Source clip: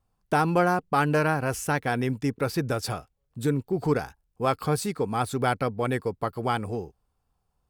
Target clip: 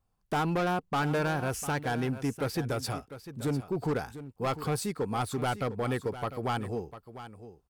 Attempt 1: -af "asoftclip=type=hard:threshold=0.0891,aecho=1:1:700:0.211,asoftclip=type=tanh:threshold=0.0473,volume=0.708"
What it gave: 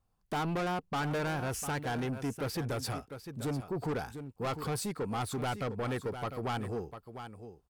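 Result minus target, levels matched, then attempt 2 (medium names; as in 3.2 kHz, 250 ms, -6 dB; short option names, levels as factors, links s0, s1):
saturation: distortion +19 dB
-af "asoftclip=type=hard:threshold=0.0891,aecho=1:1:700:0.211,asoftclip=type=tanh:threshold=0.188,volume=0.708"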